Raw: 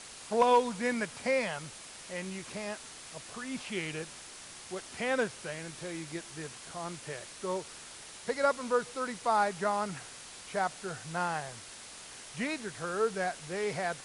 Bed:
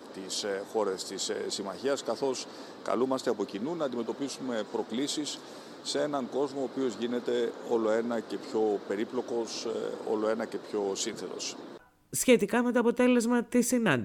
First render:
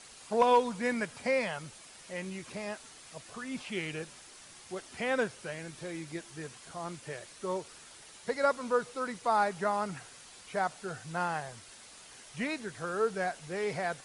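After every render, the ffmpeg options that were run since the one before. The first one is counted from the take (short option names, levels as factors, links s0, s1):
-af "afftdn=nr=6:nf=-48"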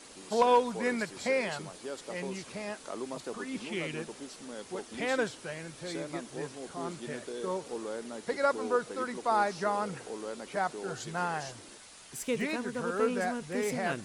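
-filter_complex "[1:a]volume=0.299[s0];[0:a][s0]amix=inputs=2:normalize=0"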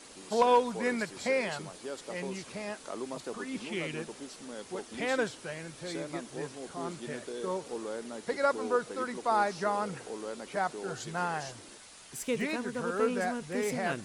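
-af anull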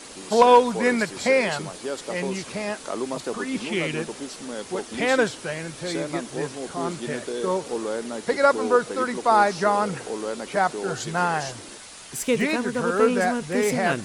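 -af "volume=2.99"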